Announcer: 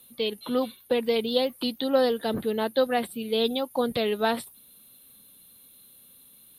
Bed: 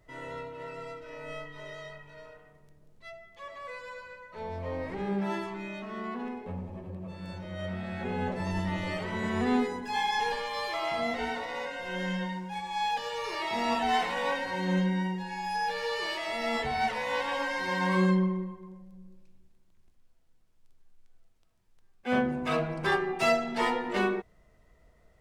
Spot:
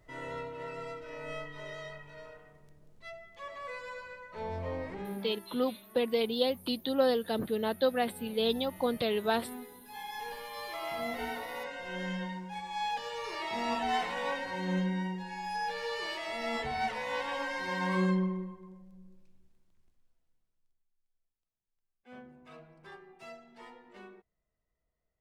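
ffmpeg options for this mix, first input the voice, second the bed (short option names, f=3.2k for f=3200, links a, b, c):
-filter_complex "[0:a]adelay=5050,volume=-4.5dB[a];[1:a]volume=14dB,afade=t=out:st=4.56:d=0.81:silence=0.125893,afade=t=in:st=9.8:d=1.46:silence=0.199526,afade=t=out:st=19.57:d=1.29:silence=0.105925[b];[a][b]amix=inputs=2:normalize=0"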